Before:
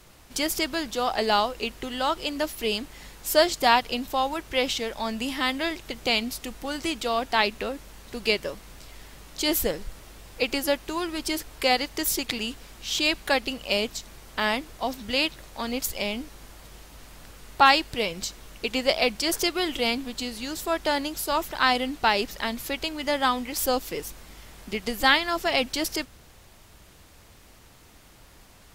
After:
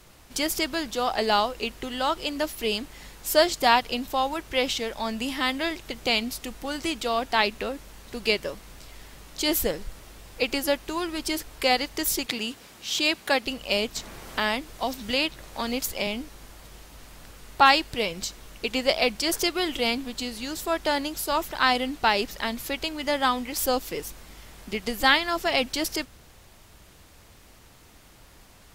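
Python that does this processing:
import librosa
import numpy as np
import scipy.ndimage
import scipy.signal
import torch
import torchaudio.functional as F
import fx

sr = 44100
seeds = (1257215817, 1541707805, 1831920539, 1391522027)

y = fx.highpass(x, sr, hz=120.0, slope=12, at=(12.26, 13.46))
y = fx.band_squash(y, sr, depth_pct=40, at=(13.96, 16.07))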